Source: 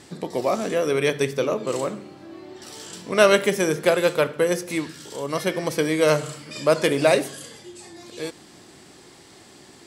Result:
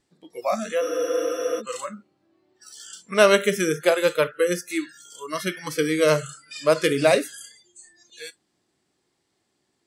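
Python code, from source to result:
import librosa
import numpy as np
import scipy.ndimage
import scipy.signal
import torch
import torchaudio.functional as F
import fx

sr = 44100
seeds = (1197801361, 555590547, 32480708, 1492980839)

y = fx.noise_reduce_blind(x, sr, reduce_db=25)
y = fx.spec_freeze(y, sr, seeds[0], at_s=0.83, hold_s=0.75)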